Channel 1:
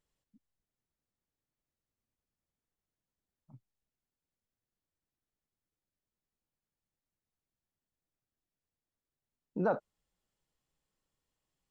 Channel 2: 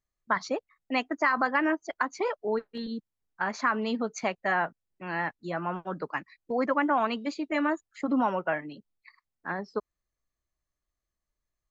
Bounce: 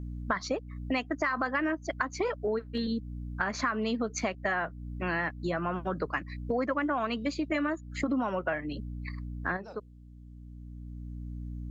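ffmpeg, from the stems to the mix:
ffmpeg -i stem1.wav -i stem2.wav -filter_complex "[0:a]highshelf=frequency=2000:width_type=q:width=1.5:gain=12,bandreject=frequency=50:width_type=h:width=6,bandreject=frequency=100:width_type=h:width=6,bandreject=frequency=150:width_type=h:width=6,bandreject=frequency=200:width_type=h:width=6,bandreject=frequency=250:width_type=h:width=6,bandreject=frequency=300:width_type=h:width=6,bandreject=frequency=350:width_type=h:width=6,bandreject=frequency=400:width_type=h:width=6,bandreject=frequency=450:width_type=h:width=6,bandreject=frequency=500:width_type=h:width=6,volume=-14.5dB,asplit=2[link_01][link_02];[1:a]equalizer=frequency=870:width=6:gain=-8,acontrast=80,aeval=exprs='val(0)+0.0112*(sin(2*PI*60*n/s)+sin(2*PI*2*60*n/s)/2+sin(2*PI*3*60*n/s)/3+sin(2*PI*4*60*n/s)/4+sin(2*PI*5*60*n/s)/5)':channel_layout=same,volume=2.5dB[link_03];[link_02]apad=whole_len=516274[link_04];[link_03][link_04]sidechaincompress=threshold=-58dB:ratio=5:attack=16:release=1330[link_05];[link_01][link_05]amix=inputs=2:normalize=0,acompressor=threshold=-29dB:ratio=4" out.wav

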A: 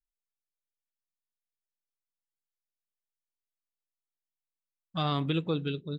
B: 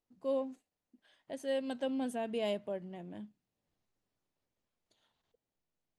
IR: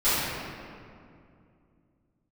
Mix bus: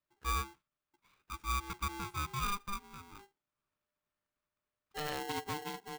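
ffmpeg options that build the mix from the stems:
-filter_complex "[0:a]volume=-9.5dB[link_01];[1:a]acrossover=split=390 2600:gain=0.1 1 0.0794[link_02][link_03][link_04];[link_02][link_03][link_04]amix=inputs=3:normalize=0,volume=1.5dB[link_05];[link_01][link_05]amix=inputs=2:normalize=0,aeval=exprs='val(0)*sgn(sin(2*PI*600*n/s))':channel_layout=same"

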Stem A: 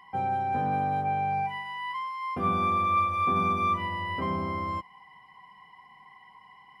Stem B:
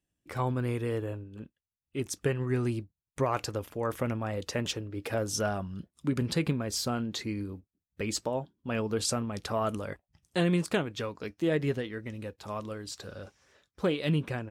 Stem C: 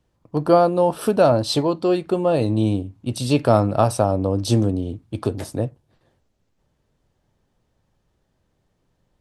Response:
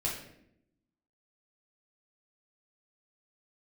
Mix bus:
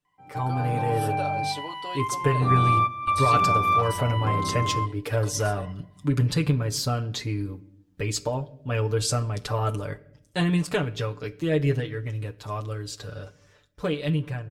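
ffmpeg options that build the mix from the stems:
-filter_complex "[0:a]adelay=50,volume=-6dB[link_01];[1:a]equalizer=frequency=180:width=1.1:gain=3.5,volume=-5.5dB,asplit=2[link_02][link_03];[link_03]volume=-17.5dB[link_04];[2:a]highpass=frequency=1300:poles=1,acompressor=threshold=-25dB:ratio=6,volume=-13.5dB,asplit=2[link_05][link_06];[link_06]apad=whole_len=302106[link_07];[link_01][link_07]sidechaingate=range=-15dB:threshold=-55dB:ratio=16:detection=peak[link_08];[3:a]atrim=start_sample=2205[link_09];[link_04][link_09]afir=irnorm=-1:irlink=0[link_10];[link_08][link_02][link_05][link_10]amix=inputs=4:normalize=0,asubboost=boost=5.5:cutoff=77,aecho=1:1:6.8:0.82,dynaudnorm=framelen=160:gausssize=9:maxgain=6dB"

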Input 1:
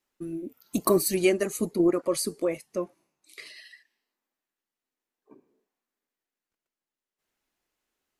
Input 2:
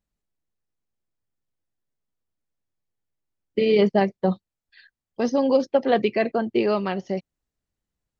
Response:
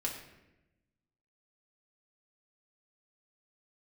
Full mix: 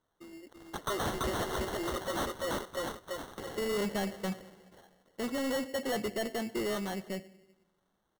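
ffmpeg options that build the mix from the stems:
-filter_complex "[0:a]highpass=910,volume=3dB,asplit=2[link_01][link_02];[link_02]volume=-3.5dB[link_03];[1:a]volume=-9dB,asplit=2[link_04][link_05];[link_05]volume=-14.5dB[link_06];[2:a]atrim=start_sample=2205[link_07];[link_06][link_07]afir=irnorm=-1:irlink=0[link_08];[link_03]aecho=0:1:336|672|1008|1344|1680|2016|2352:1|0.48|0.23|0.111|0.0531|0.0255|0.0122[link_09];[link_01][link_04][link_08][link_09]amix=inputs=4:normalize=0,acrusher=samples=18:mix=1:aa=0.000001,asoftclip=type=tanh:threshold=-29dB"

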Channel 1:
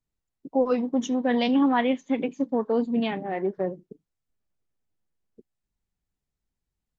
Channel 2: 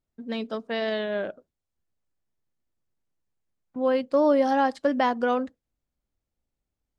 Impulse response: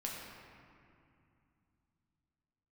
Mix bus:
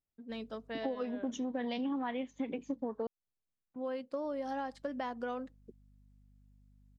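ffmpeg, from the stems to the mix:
-filter_complex "[0:a]aeval=exprs='val(0)+0.001*(sin(2*PI*50*n/s)+sin(2*PI*2*50*n/s)/2+sin(2*PI*3*50*n/s)/3+sin(2*PI*4*50*n/s)/4+sin(2*PI*5*50*n/s)/5)':channel_layout=same,adelay=300,volume=-1.5dB,asplit=3[link_01][link_02][link_03];[link_01]atrim=end=3.07,asetpts=PTS-STARTPTS,afade=type=out:start_time=3.066:duration=0.004:curve=hsin[link_04];[link_02]atrim=start=3.07:end=4.24,asetpts=PTS-STARTPTS,volume=0[link_05];[link_03]atrim=start=4.24,asetpts=PTS-STARTPTS,afade=type=in:duration=0.004:curve=hsin[link_06];[link_04][link_05][link_06]concat=n=3:v=0:a=1[link_07];[1:a]volume=-11dB[link_08];[link_07][link_08]amix=inputs=2:normalize=0,acompressor=threshold=-34dB:ratio=6"

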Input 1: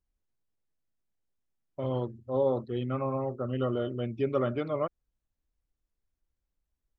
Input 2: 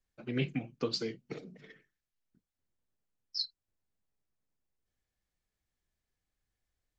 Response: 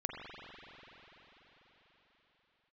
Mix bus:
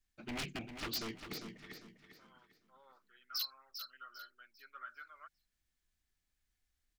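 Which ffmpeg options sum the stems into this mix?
-filter_complex "[0:a]highpass=frequency=1500:width_type=q:width=11,highshelf=frequency=2600:gain=-12,adelay=400,volume=-14.5dB[link_01];[1:a]aeval=exprs='0.0211*(abs(mod(val(0)/0.0211+3,4)-2)-1)':channel_layout=same,volume=2.5dB,asplit=2[link_02][link_03];[link_03]volume=-8.5dB,aecho=0:1:399|798|1197|1596|1995:1|0.32|0.102|0.0328|0.0105[link_04];[link_01][link_02][link_04]amix=inputs=3:normalize=0,equalizer=frequency=125:width_type=o:width=1:gain=-8,equalizer=frequency=500:width_type=o:width=1:gain=-10,equalizer=frequency=1000:width_type=o:width=1:gain=-4"

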